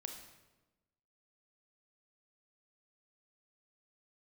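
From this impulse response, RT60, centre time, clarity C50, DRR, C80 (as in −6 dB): 1.1 s, 29 ms, 6.0 dB, 4.0 dB, 8.5 dB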